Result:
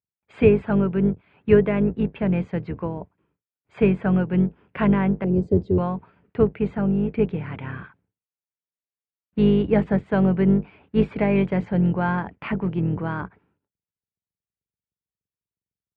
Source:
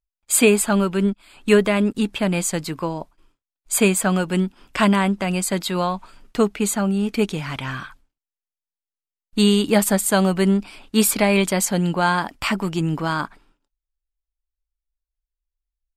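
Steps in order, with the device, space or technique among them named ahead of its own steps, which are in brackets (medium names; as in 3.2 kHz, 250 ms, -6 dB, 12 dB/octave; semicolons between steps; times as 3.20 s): 5.24–5.78 s: FFT filter 180 Hz 0 dB, 410 Hz +12 dB, 1 kHz -27 dB, 2.3 kHz -25 dB, 5.6 kHz +3 dB; sub-octave bass pedal (octave divider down 2 oct, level +3 dB; cabinet simulation 77–2300 Hz, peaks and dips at 110 Hz +5 dB, 180 Hz +7 dB, 440 Hz +7 dB, 1.2 kHz -4 dB); trim -6 dB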